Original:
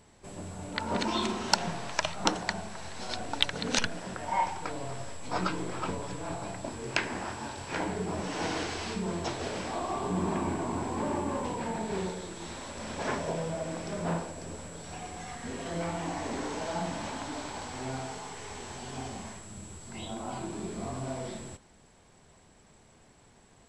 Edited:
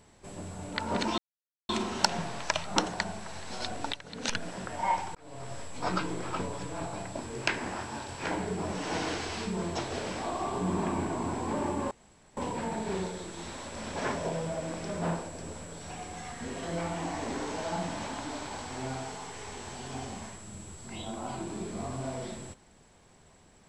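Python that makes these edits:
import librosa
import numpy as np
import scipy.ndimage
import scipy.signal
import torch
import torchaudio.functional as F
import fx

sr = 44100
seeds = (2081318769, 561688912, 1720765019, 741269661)

y = fx.edit(x, sr, fx.insert_silence(at_s=1.18, length_s=0.51),
    fx.fade_in_from(start_s=3.42, length_s=0.52, curve='qua', floor_db=-12.5),
    fx.fade_in_span(start_s=4.64, length_s=0.42),
    fx.insert_room_tone(at_s=11.4, length_s=0.46), tone=tone)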